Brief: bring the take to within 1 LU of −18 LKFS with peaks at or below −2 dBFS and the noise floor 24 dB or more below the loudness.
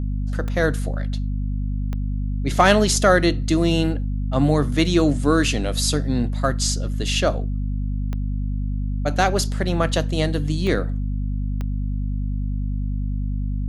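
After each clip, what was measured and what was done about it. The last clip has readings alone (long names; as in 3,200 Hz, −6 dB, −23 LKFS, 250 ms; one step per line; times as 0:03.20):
number of clicks 5; mains hum 50 Hz; hum harmonics up to 250 Hz; level of the hum −21 dBFS; integrated loudness −22.0 LKFS; sample peak −2.0 dBFS; target loudness −18.0 LKFS
→ click removal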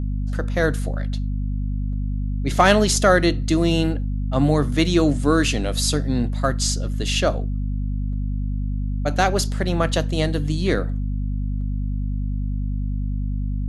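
number of clicks 0; mains hum 50 Hz; hum harmonics up to 250 Hz; level of the hum −21 dBFS
→ mains-hum notches 50/100/150/200/250 Hz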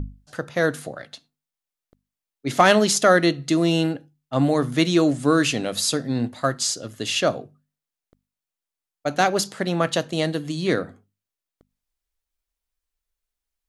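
mains hum none found; integrated loudness −21.5 LKFS; sample peak −3.5 dBFS; target loudness −18.0 LKFS
→ level +3.5 dB
brickwall limiter −2 dBFS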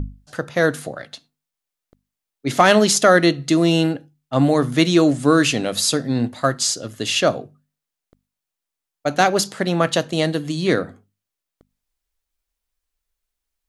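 integrated loudness −18.5 LKFS; sample peak −2.0 dBFS; background noise floor −85 dBFS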